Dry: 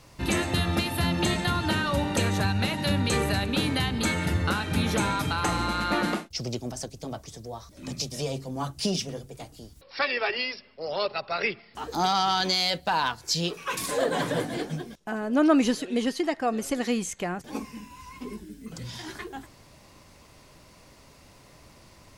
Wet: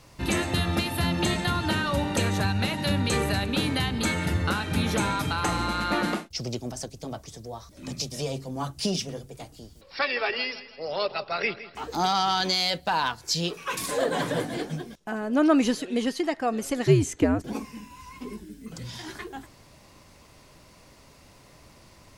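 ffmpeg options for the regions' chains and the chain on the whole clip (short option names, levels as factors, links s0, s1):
-filter_complex "[0:a]asettb=1/sr,asplit=3[s0][s1][s2];[s0]atrim=end=9.534[s3];[s1]atrim=start=9.53:end=11.97,asetpts=PTS-STARTPTS,afade=t=in:d=0.004:c=qsin,afade=t=out:st=2.436:d=0.004:c=qsin,equalizer=f=11000:t=o:w=0.23:g=-6,aecho=1:1:163|326|489|652:0.178|0.0747|0.0314|0.0132,atrim=end_sample=107604[s4];[s2]atrim=start=11.966[s5];[s3][s4]acrossfade=d=0.004:c1=hsin:c2=qsin[s6];[s6][s5]acrossfade=d=0.004:c1=qsin:c2=hsin,asettb=1/sr,asplit=3[s7][s8][s9];[s7]atrim=end=16.864[s10];[s8]atrim=start=16.86:end=17.53,asetpts=PTS-STARTPTS,afade=t=in:d=0.004:c=qsin,afade=t=out:st=0.666:d=0.004:c=qsin,equalizer=f=390:w=1.1:g=14.5,afreqshift=-97[s11];[s9]atrim=start=17.526[s12];[s10][s11]acrossfade=d=0.004:c1=hsin:c2=qsin[s13];[s13][s12]acrossfade=d=0.004:c1=qsin:c2=hsin"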